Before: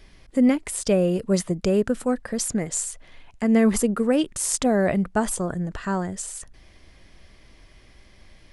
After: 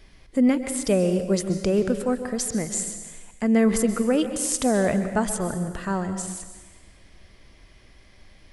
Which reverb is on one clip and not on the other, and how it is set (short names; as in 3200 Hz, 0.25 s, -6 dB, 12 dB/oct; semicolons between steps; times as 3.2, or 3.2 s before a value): plate-style reverb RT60 1.2 s, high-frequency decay 0.95×, pre-delay 0.115 s, DRR 9 dB; gain -1 dB